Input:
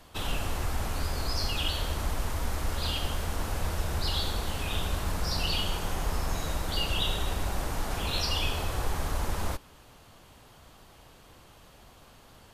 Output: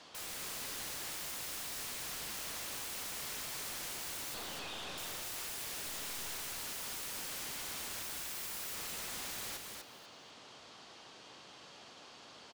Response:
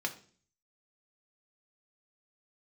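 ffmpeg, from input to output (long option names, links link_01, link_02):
-filter_complex "[0:a]lowpass=frequency=5600:width=0.5412,lowpass=frequency=5600:width=1.3066,acrossover=split=3800[link_01][link_02];[link_02]acompressor=threshold=-47dB:ratio=4:attack=1:release=60[link_03];[link_01][link_03]amix=inputs=2:normalize=0,highpass=220,aemphasis=mode=production:type=75fm,alimiter=level_in=5dB:limit=-24dB:level=0:latency=1:release=15,volume=-5dB,asettb=1/sr,asplit=3[link_04][link_05][link_06];[link_04]atrim=end=4.344[link_07];[link_05]atrim=start=4.34:end=4.98,asetpts=PTS-STARTPTS,afade=type=in:duration=0.004:curve=qsin,afade=type=out:start_time=0.636:duration=0.004:curve=qsin,aeval=exprs='(tanh(112*val(0)+0.35)-tanh(0.35))/112':channel_layout=same[link_08];[link_06]atrim=start=4.976[link_09];[link_07][link_08]acrossfade=duration=0.004:curve1=hsin:curve2=qsin[link_10];[link_10][link_09]acrossfade=duration=0.004:curve1=qsin:curve2=hsin,asettb=1/sr,asplit=3[link_11][link_12][link_13];[link_11]atrim=end=8.024[link_14];[link_12]atrim=start=8.02:end=8.74,asetpts=PTS-STARTPTS,afade=type=in:duration=0.004:curve=qsin,afade=type=out:start_time=0.716:duration=0.004:curve=qsin,acontrast=90[link_15];[link_13]atrim=start=8.736[link_16];[link_14][link_15]acrossfade=duration=0.004:curve1=hsin:curve2=qsin[link_17];[link_17][link_16]acrossfade=duration=0.004:curve1=qsin:curve2=hsin,aeval=exprs='(mod(75*val(0)+1,2)-1)/75':channel_layout=same,asettb=1/sr,asplit=3[link_18][link_19][link_20];[link_18]atrim=end=5.864[link_21];[link_19]atrim=start=5.86:end=6.35,asetpts=PTS-STARTPTS,afade=type=in:duration=0.004:curve=qsin,afade=type=out:start_time=0.486:duration=0.004:curve=qsin,aeval=exprs='0.0133*(cos(1*acos(clip(val(0)/0.0133,-1,1)))-cos(1*PI/2))+0.00211*(cos(8*acos(clip(val(0)/0.0133,-1,1)))-cos(8*PI/2))':channel_layout=same[link_22];[link_20]atrim=start=6.346[link_23];[link_21][link_22]acrossfade=duration=0.004:curve1=hsin:curve2=qsin[link_24];[link_24][link_23]acrossfade=duration=0.004:curve1=qsin:curve2=hsin,aecho=1:1:247|494|741:0.631|0.114|0.0204,volume=-1.5dB"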